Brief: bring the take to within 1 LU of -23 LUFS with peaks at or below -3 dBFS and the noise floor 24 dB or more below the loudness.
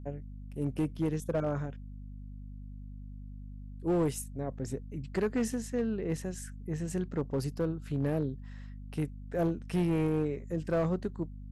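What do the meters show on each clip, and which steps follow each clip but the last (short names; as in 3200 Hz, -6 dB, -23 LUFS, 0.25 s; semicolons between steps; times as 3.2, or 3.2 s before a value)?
clipped 1.4%; flat tops at -23.5 dBFS; hum 50 Hz; harmonics up to 250 Hz; hum level -42 dBFS; loudness -33.5 LUFS; peak -23.5 dBFS; loudness target -23.0 LUFS
-> clip repair -23.5 dBFS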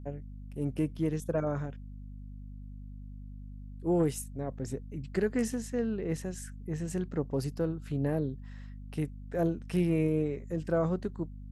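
clipped 0.0%; hum 50 Hz; harmonics up to 200 Hz; hum level -42 dBFS
-> de-hum 50 Hz, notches 4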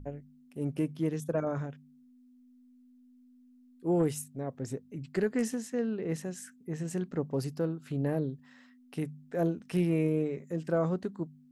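hum none; loudness -33.0 LUFS; peak -16.5 dBFS; loudness target -23.0 LUFS
-> gain +10 dB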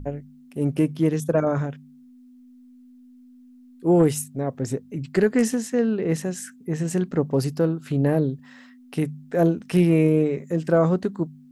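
loudness -23.0 LUFS; peak -6.5 dBFS; noise floor -50 dBFS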